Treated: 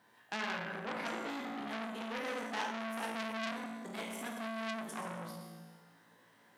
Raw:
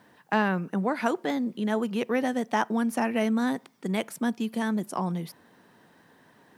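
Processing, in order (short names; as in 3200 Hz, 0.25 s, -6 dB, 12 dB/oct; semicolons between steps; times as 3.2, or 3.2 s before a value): low shelf 480 Hz -8.5 dB; resonator 56 Hz, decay 1.2 s, harmonics all, mix 90%; reverb RT60 1.2 s, pre-delay 17 ms, DRR 2.5 dB; core saturation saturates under 3200 Hz; gain +6.5 dB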